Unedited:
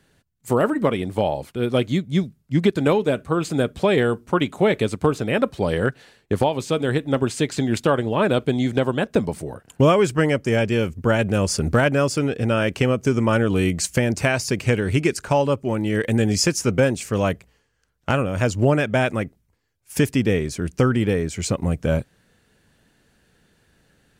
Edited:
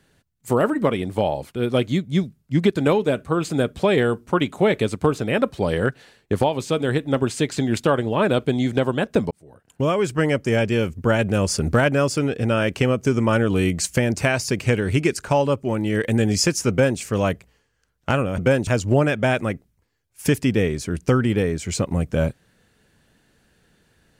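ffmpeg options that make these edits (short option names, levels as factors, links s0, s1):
-filter_complex "[0:a]asplit=4[s0][s1][s2][s3];[s0]atrim=end=9.31,asetpts=PTS-STARTPTS,afade=t=out:st=9.306:d=0.004:c=hsin[s4];[s1]atrim=start=9.31:end=18.382,asetpts=PTS-STARTPTS,afade=t=in:d=1.05[s5];[s2]atrim=start=16.698:end=16.992[s6];[s3]atrim=start=18.378[s7];[s4][s5]concat=n=2:v=0:a=1[s8];[s8][s6]acrossfade=d=0.004:c1=hsin:c2=hsin[s9];[s9][s7]acrossfade=d=0.004:c1=hsin:c2=hsin"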